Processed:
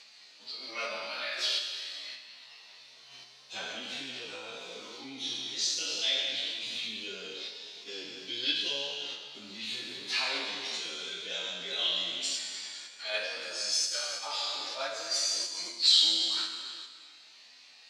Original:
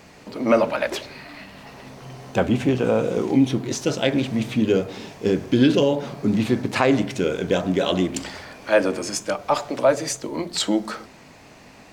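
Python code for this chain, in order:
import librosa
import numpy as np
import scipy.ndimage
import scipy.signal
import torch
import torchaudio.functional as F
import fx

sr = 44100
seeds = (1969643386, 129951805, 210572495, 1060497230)

p1 = fx.spec_trails(x, sr, decay_s=1.38)
p2 = fx.level_steps(p1, sr, step_db=12)
p3 = p1 + F.gain(torch.from_numpy(p2), 2.0).numpy()
p4 = fx.stretch_vocoder_free(p3, sr, factor=1.5)
y = fx.bandpass_q(p4, sr, hz=4100.0, q=3.3)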